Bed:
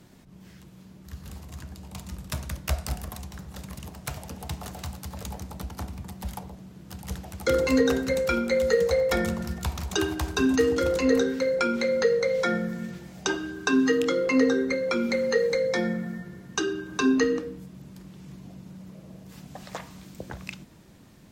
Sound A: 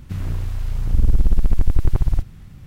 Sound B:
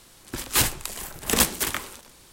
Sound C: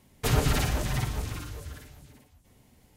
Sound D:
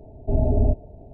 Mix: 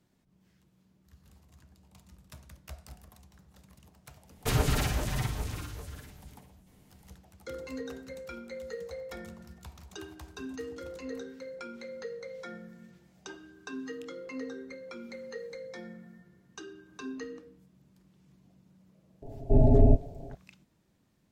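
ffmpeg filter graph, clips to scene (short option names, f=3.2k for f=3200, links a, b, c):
-filter_complex "[0:a]volume=-18dB[a];[4:a]aecho=1:1:7.3:0.65[b];[3:a]atrim=end=2.96,asetpts=PTS-STARTPTS,volume=-2.5dB,afade=t=in:d=0.1,afade=t=out:st=2.86:d=0.1,adelay=4220[c];[b]atrim=end=1.13,asetpts=PTS-STARTPTS,volume=-0.5dB,afade=t=in:d=0.004:c=hsin,afade=t=out:st=1.126:d=0.004:c=hsin,adelay=19220[d];[a][c][d]amix=inputs=3:normalize=0"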